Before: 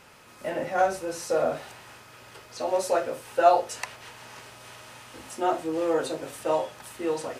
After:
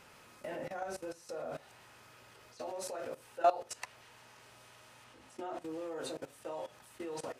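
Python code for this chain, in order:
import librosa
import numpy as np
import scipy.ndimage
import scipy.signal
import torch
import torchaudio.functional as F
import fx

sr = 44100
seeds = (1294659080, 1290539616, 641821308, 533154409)

y = fx.high_shelf(x, sr, hz=8100.0, db=-9.0, at=(5.04, 5.62))
y = fx.level_steps(y, sr, step_db=18)
y = F.gain(torch.from_numpy(y), -4.5).numpy()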